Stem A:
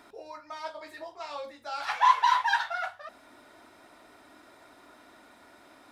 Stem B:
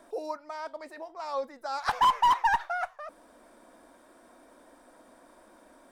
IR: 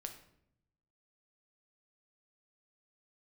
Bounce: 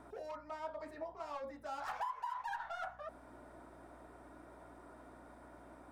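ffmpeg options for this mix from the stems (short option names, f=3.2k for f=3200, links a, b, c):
-filter_complex "[0:a]lowpass=1.1k,volume=0dB[a];[1:a]aeval=exprs='val(0)+0.002*(sin(2*PI*60*n/s)+sin(2*PI*2*60*n/s)/2+sin(2*PI*3*60*n/s)/3+sin(2*PI*4*60*n/s)/4+sin(2*PI*5*60*n/s)/5)':c=same,asoftclip=type=tanh:threshold=-35dB,volume=-9.5dB,asplit=2[b][c];[c]apad=whole_len=261035[d];[a][d]sidechaincompress=threshold=-50dB:ratio=8:attack=16:release=247[e];[e][b]amix=inputs=2:normalize=0,acompressor=threshold=-37dB:ratio=16"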